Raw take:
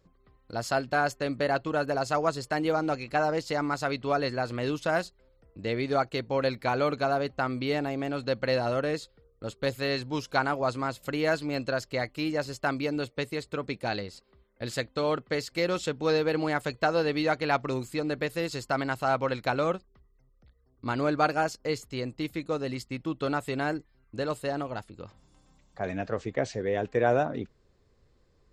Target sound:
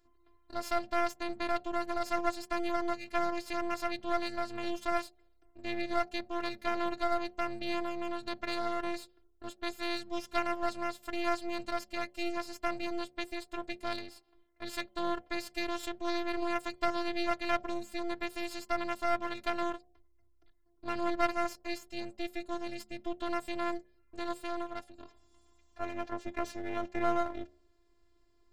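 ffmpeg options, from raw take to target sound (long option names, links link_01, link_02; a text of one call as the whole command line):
ffmpeg -i in.wav -af "afftfilt=real='hypot(re,im)*cos(PI*b)':imag='0':win_size=512:overlap=0.75,aeval=exprs='max(val(0),0)':channel_layout=same,bandreject=frequency=71.06:width_type=h:width=4,bandreject=frequency=142.12:width_type=h:width=4,bandreject=frequency=213.18:width_type=h:width=4,bandreject=frequency=284.24:width_type=h:width=4,bandreject=frequency=355.3:width_type=h:width=4,bandreject=frequency=426.36:width_type=h:width=4,bandreject=frequency=497.42:width_type=h:width=4,bandreject=frequency=568.48:width_type=h:width=4,bandreject=frequency=639.54:width_type=h:width=4,bandreject=frequency=710.6:width_type=h:width=4,bandreject=frequency=781.66:width_type=h:width=4" out.wav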